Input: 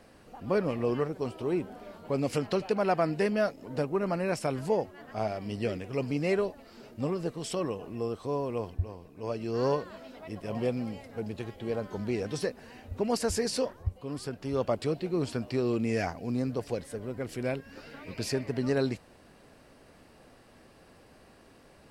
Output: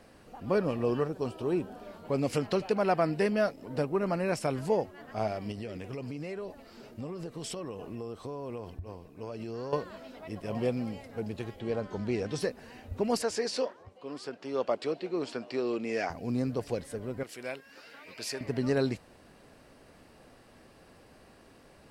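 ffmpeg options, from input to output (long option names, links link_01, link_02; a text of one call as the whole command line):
ffmpeg -i in.wav -filter_complex "[0:a]asettb=1/sr,asplit=3[link_01][link_02][link_03];[link_01]atrim=end=0.564[link_04];[link_02]atrim=start=0.56:end=1.88,asetpts=PTS-STARTPTS,afade=type=in:duration=0.004:curve=qsin,afade=type=out:start_time=1.316:duration=0.004:curve=qsin,bandreject=frequency=2100:width=6.5[link_05];[link_03]atrim=start=1.876[link_06];[link_04][link_05]acrossfade=duration=0.004:curve1=hsin:curve2=qsin[link_07];[link_07][link_06]acrossfade=duration=0.004:curve1=qsin:curve2=hsin,asettb=1/sr,asplit=3[link_08][link_09][link_10];[link_08]atrim=end=2.904[link_11];[link_09]atrim=start=2.9:end=4.02,asetpts=PTS-STARTPTS,afade=type=in:duration=0.004:curve=qsin,afade=type=out:start_time=1.116:duration=0.004:curve=qsin,bandreject=frequency=6700:width=12[link_12];[link_10]atrim=start=4.016[link_13];[link_11][link_12]acrossfade=duration=0.004:curve1=hsin:curve2=qsin[link_14];[link_14][link_13]acrossfade=duration=0.004:curve1=qsin:curve2=hsin,asettb=1/sr,asplit=3[link_15][link_16][link_17];[link_15]atrim=end=5.514[link_18];[link_16]atrim=start=5.51:end=9.73,asetpts=PTS-STARTPTS,afade=type=in:duration=0.004:curve=qsin,afade=type=out:start_time=4.216:duration=0.004:curve=qsin,acompressor=threshold=-34dB:ratio=12:attack=3.2:release=140:knee=1:detection=peak[link_19];[link_17]atrim=start=9.726[link_20];[link_18][link_19]acrossfade=duration=0.004:curve1=hsin:curve2=qsin[link_21];[link_21][link_20]acrossfade=duration=0.004:curve1=qsin:curve2=hsin,asettb=1/sr,asplit=3[link_22][link_23][link_24];[link_22]atrim=end=11.604[link_25];[link_23]atrim=start=11.6:end=12.38,asetpts=PTS-STARTPTS,afade=type=in:duration=0.004:curve=qsin,afade=type=out:start_time=0.776:duration=0.004:curve=qsin,lowpass=8100[link_26];[link_24]atrim=start=12.376[link_27];[link_25][link_26]acrossfade=duration=0.004:curve1=hsin:curve2=qsin[link_28];[link_28][link_27]acrossfade=duration=0.004:curve1=qsin:curve2=hsin,asettb=1/sr,asplit=3[link_29][link_30][link_31];[link_29]atrim=end=13.224[link_32];[link_30]atrim=start=13.22:end=16.1,asetpts=PTS-STARTPTS,afade=type=in:duration=0.004:curve=qsin,afade=type=out:start_time=2.876:duration=0.004:curve=qsin,highpass=320,lowpass=6200[link_33];[link_31]atrim=start=16.096[link_34];[link_32][link_33]acrossfade=duration=0.004:curve1=hsin:curve2=qsin[link_35];[link_35][link_34]acrossfade=duration=0.004:curve1=qsin:curve2=hsin,asettb=1/sr,asplit=3[link_36][link_37][link_38];[link_36]atrim=end=17.234[link_39];[link_37]atrim=start=17.23:end=18.41,asetpts=PTS-STARTPTS,afade=type=in:duration=0.004:curve=qsin,afade=type=out:start_time=1.176:duration=0.004:curve=qsin,highpass=frequency=990:poles=1[link_40];[link_38]atrim=start=18.406[link_41];[link_39][link_40]acrossfade=duration=0.004:curve1=hsin:curve2=qsin[link_42];[link_42][link_41]acrossfade=duration=0.004:curve1=qsin:curve2=hsin" out.wav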